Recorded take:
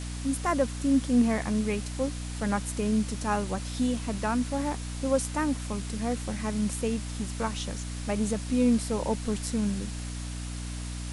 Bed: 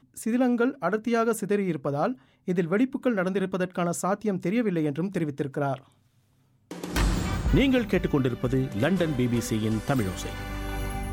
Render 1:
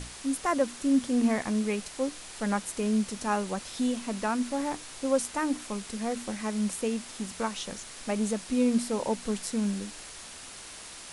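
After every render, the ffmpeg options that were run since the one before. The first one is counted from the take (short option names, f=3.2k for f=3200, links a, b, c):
-af "bandreject=f=60:t=h:w=6,bandreject=f=120:t=h:w=6,bandreject=f=180:t=h:w=6,bandreject=f=240:t=h:w=6,bandreject=f=300:t=h:w=6"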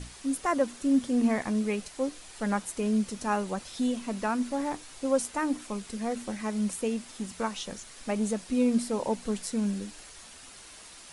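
-af "afftdn=nr=6:nf=-45"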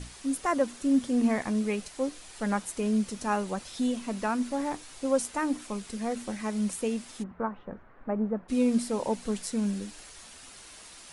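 -filter_complex "[0:a]asplit=3[a][b][c];[a]afade=t=out:st=7.22:d=0.02[d];[b]lowpass=f=1.5k:w=0.5412,lowpass=f=1.5k:w=1.3066,afade=t=in:st=7.22:d=0.02,afade=t=out:st=8.48:d=0.02[e];[c]afade=t=in:st=8.48:d=0.02[f];[d][e][f]amix=inputs=3:normalize=0"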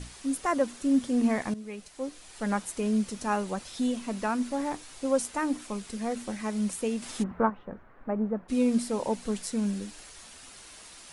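-filter_complex "[0:a]asettb=1/sr,asplit=3[a][b][c];[a]atrim=end=7.024[d];[b]atrim=start=7.02:end=7.5,asetpts=PTS-STARTPTS,afade=t=in:d=0.004:c=qsin,afade=t=out:st=0.476:d=0.004:c=qsin,acontrast=66[e];[c]atrim=start=7.496[f];[d][e]acrossfade=d=0.004:c1=hsin:c2=qsin[g];[g][f]acrossfade=d=0.004:c1=qsin:c2=hsin,asplit=2[h][i];[h]atrim=end=1.54,asetpts=PTS-STARTPTS,afade=t=out:st=1.536:d=0.004:c=hsin:silence=0.177828[j];[i]atrim=start=1.54,asetpts=PTS-STARTPTS,afade=t=in:d=0.98:silence=0.177828[k];[j][k]concat=n=2:v=0:a=1"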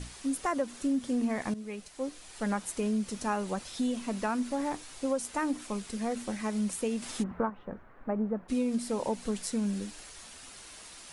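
-af "acompressor=threshold=-26dB:ratio=6"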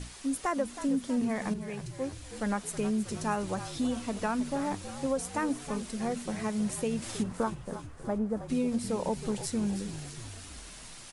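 -filter_complex "[0:a]asplit=8[a][b][c][d][e][f][g][h];[b]adelay=319,afreqshift=-52,volume=-12dB[i];[c]adelay=638,afreqshift=-104,volume=-16.2dB[j];[d]adelay=957,afreqshift=-156,volume=-20.3dB[k];[e]adelay=1276,afreqshift=-208,volume=-24.5dB[l];[f]adelay=1595,afreqshift=-260,volume=-28.6dB[m];[g]adelay=1914,afreqshift=-312,volume=-32.8dB[n];[h]adelay=2233,afreqshift=-364,volume=-36.9dB[o];[a][i][j][k][l][m][n][o]amix=inputs=8:normalize=0"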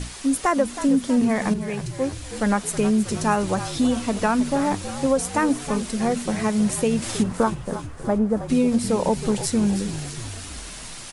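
-af "volume=10dB"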